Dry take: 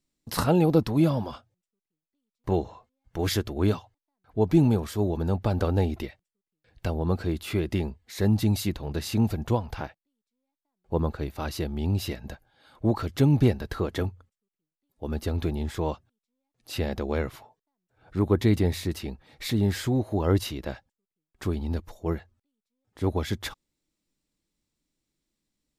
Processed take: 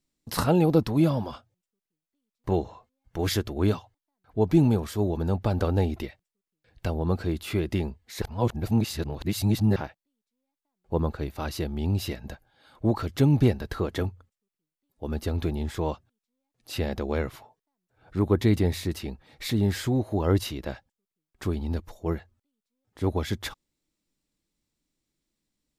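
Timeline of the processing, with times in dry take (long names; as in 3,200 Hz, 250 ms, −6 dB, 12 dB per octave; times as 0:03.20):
0:08.22–0:09.76: reverse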